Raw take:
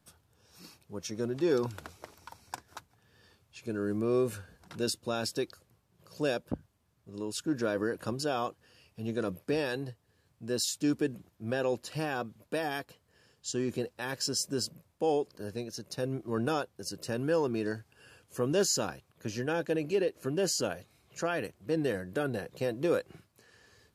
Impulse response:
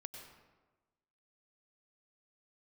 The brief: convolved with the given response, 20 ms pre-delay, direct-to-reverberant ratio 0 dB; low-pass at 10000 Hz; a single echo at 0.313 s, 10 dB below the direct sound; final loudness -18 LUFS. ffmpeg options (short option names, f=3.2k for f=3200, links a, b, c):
-filter_complex "[0:a]lowpass=10k,aecho=1:1:313:0.316,asplit=2[a][b];[1:a]atrim=start_sample=2205,adelay=20[c];[b][c]afir=irnorm=-1:irlink=0,volume=4dB[d];[a][d]amix=inputs=2:normalize=0,volume=12dB"